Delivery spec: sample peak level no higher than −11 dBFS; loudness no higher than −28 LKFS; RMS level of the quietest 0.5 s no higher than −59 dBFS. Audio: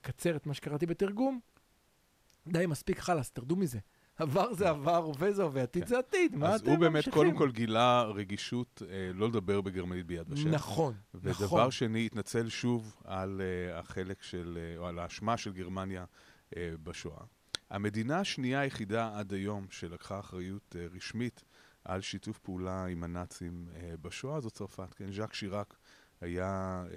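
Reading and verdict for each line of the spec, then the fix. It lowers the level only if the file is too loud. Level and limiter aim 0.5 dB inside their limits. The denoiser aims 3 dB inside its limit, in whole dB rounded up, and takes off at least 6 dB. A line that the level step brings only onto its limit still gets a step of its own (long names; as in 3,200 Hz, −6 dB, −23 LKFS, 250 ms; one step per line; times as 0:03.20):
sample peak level −12.0 dBFS: in spec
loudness −34.0 LKFS: in spec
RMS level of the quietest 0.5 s −70 dBFS: in spec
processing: no processing needed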